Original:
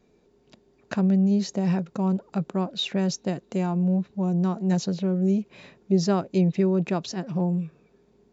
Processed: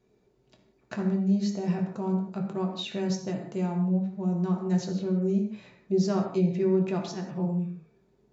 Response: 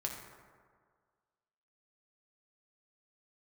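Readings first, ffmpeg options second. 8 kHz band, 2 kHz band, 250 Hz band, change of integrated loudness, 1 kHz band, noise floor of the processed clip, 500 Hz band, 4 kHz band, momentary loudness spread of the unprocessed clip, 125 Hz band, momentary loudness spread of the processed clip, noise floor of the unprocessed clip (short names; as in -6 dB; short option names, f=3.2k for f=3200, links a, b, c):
n/a, -5.0 dB, -3.5 dB, -3.5 dB, -4.5 dB, -67 dBFS, -1.5 dB, -6.5 dB, 7 LU, -3.5 dB, 7 LU, -63 dBFS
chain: -filter_complex "[1:a]atrim=start_sample=2205,afade=t=out:st=0.24:d=0.01,atrim=end_sample=11025[a];[0:a][a]afir=irnorm=-1:irlink=0,volume=-5.5dB"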